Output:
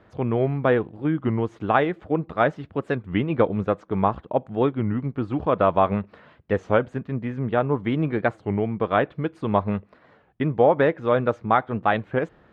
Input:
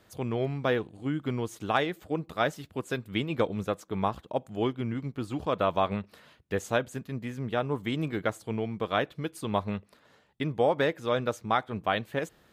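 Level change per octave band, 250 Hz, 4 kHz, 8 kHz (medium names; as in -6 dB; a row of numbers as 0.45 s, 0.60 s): +7.5 dB, -4.0 dB, under -15 dB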